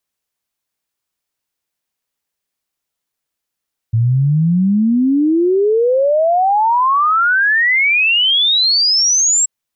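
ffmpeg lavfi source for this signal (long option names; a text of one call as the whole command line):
ffmpeg -f lavfi -i "aevalsrc='0.316*clip(min(t,5.53-t)/0.01,0,1)*sin(2*PI*110*5.53/log(7700/110)*(exp(log(7700/110)*t/5.53)-1))':duration=5.53:sample_rate=44100" out.wav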